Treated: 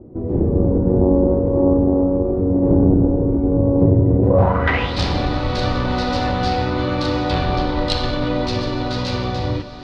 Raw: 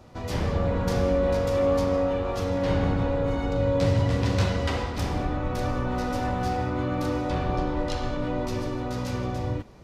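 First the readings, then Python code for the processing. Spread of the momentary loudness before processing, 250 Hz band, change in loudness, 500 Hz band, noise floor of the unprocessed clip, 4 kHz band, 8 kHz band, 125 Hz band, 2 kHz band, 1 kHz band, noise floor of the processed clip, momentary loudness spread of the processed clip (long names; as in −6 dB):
7 LU, +11.0 dB, +8.5 dB, +6.5 dB, −33 dBFS, +11.0 dB, can't be measured, +8.0 dB, +8.0 dB, +7.0 dB, −24 dBFS, 8 LU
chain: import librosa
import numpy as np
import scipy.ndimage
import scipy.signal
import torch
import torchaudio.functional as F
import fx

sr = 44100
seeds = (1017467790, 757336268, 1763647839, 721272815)

y = fx.echo_diffused(x, sr, ms=1049, feedback_pct=47, wet_db=-14.5)
y = fx.filter_sweep_lowpass(y, sr, from_hz=360.0, to_hz=4200.0, start_s=4.21, end_s=4.94, q=3.6)
y = fx.cheby_harmonics(y, sr, harmonics=(2,), levels_db=(-13,), full_scale_db=-10.0)
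y = F.gain(torch.from_numpy(y), 7.0).numpy()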